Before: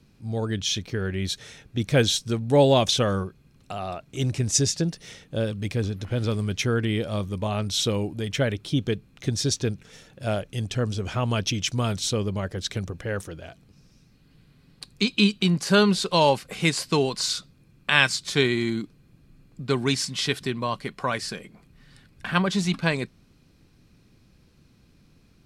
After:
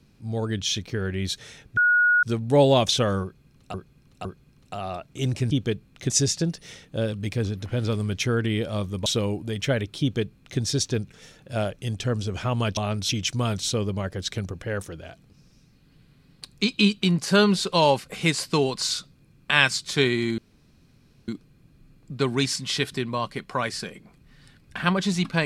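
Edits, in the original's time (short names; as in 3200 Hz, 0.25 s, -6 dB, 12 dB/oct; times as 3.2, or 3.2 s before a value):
1.77–2.23 bleep 1450 Hz -15.5 dBFS
3.23–3.74 loop, 3 plays
7.45–7.77 move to 11.48
8.72–9.31 copy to 4.49
18.77 insert room tone 0.90 s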